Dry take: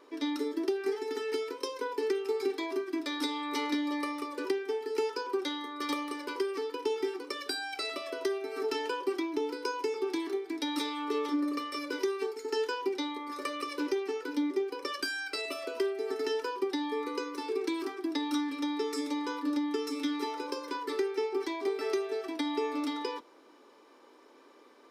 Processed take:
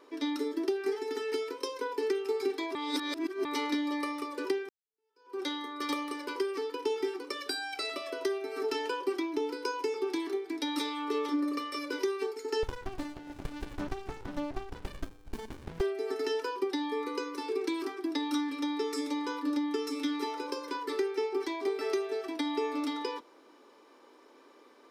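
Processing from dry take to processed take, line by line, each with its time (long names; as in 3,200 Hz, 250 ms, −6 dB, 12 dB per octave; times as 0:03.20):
0:02.75–0:03.45: reverse
0:04.69–0:05.41: fade in exponential
0:12.63–0:15.81: windowed peak hold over 65 samples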